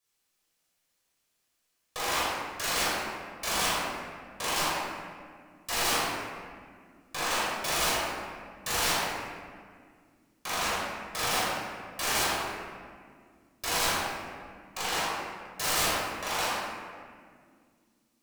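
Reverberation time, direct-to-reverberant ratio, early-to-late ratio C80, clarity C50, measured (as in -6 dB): 2.0 s, -9.0 dB, 0.0 dB, -3.0 dB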